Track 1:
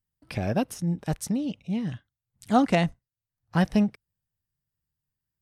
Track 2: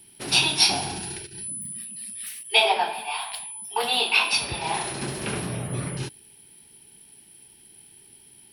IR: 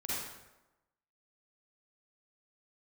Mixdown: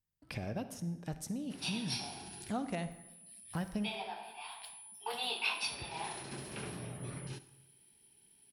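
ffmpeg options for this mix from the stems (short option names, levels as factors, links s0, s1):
-filter_complex "[0:a]acompressor=threshold=0.0178:ratio=2.5,volume=0.531,asplit=3[s0][s1][s2];[s1]volume=0.211[s3];[1:a]adelay=1300,volume=0.188,asplit=2[s4][s5];[s5]volume=0.15[s6];[s2]apad=whole_len=433279[s7];[s4][s7]sidechaincompress=threshold=0.00562:ratio=5:attack=16:release=1050[s8];[2:a]atrim=start_sample=2205[s9];[s3][s6]amix=inputs=2:normalize=0[s10];[s10][s9]afir=irnorm=-1:irlink=0[s11];[s0][s8][s11]amix=inputs=3:normalize=0"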